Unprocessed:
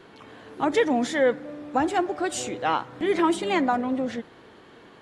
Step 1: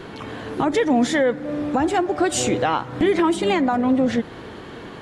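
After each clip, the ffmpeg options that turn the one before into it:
-filter_complex "[0:a]lowshelf=f=180:g=8.5,asplit=2[a][b];[b]acompressor=threshold=-29dB:ratio=6,volume=-1dB[c];[a][c]amix=inputs=2:normalize=0,alimiter=limit=-16dB:level=0:latency=1:release=323,volume=6dB"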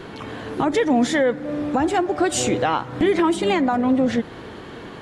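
-af anull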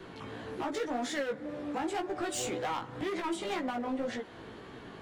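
-filter_complex "[0:a]acrossover=split=330|460|2400[a][b][c][d];[a]acompressor=threshold=-32dB:ratio=6[e];[e][b][c][d]amix=inputs=4:normalize=0,asoftclip=type=hard:threshold=-19.5dB,flanger=delay=15.5:depth=3.3:speed=1.9,volume=-7.5dB"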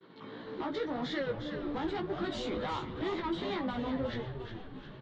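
-filter_complex "[0:a]highpass=f=140:w=0.5412,highpass=f=140:w=1.3066,equalizer=f=720:t=q:w=4:g=-7,equalizer=f=1.6k:t=q:w=4:g=-3,equalizer=f=2.6k:t=q:w=4:g=-8,equalizer=f=3.9k:t=q:w=4:g=5,lowpass=f=4.1k:w=0.5412,lowpass=f=4.1k:w=1.3066,agate=range=-33dB:threshold=-42dB:ratio=3:detection=peak,asplit=8[a][b][c][d][e][f][g][h];[b]adelay=358,afreqshift=-130,volume=-7.5dB[i];[c]adelay=716,afreqshift=-260,volume=-12.2dB[j];[d]adelay=1074,afreqshift=-390,volume=-17dB[k];[e]adelay=1432,afreqshift=-520,volume=-21.7dB[l];[f]adelay=1790,afreqshift=-650,volume=-26.4dB[m];[g]adelay=2148,afreqshift=-780,volume=-31.2dB[n];[h]adelay=2506,afreqshift=-910,volume=-35.9dB[o];[a][i][j][k][l][m][n][o]amix=inputs=8:normalize=0"

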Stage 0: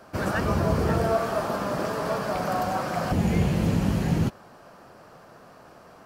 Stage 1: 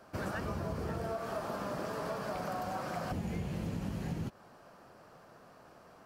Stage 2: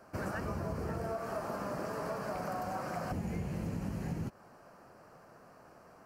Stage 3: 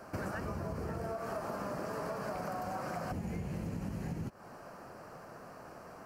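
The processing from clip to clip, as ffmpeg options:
-af "acompressor=threshold=-26dB:ratio=6,volume=-7.5dB"
-af "equalizer=f=3.5k:w=3.3:g=-12"
-af "acompressor=threshold=-45dB:ratio=3,volume=7dB"

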